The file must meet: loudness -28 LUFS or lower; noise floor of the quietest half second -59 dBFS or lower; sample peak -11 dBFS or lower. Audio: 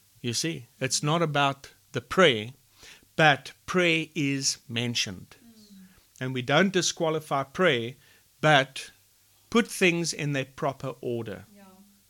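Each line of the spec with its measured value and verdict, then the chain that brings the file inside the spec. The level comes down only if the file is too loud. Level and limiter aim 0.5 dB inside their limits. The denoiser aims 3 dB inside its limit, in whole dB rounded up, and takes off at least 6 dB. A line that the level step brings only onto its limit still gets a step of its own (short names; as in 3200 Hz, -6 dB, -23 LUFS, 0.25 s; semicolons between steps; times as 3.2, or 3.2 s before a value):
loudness -25.5 LUFS: fail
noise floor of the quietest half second -62 dBFS: OK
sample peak -5.5 dBFS: fail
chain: gain -3 dB; limiter -11.5 dBFS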